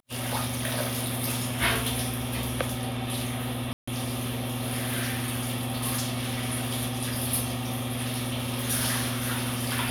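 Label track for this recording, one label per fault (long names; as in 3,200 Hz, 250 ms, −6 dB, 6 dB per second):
3.730000	3.880000	drop-out 145 ms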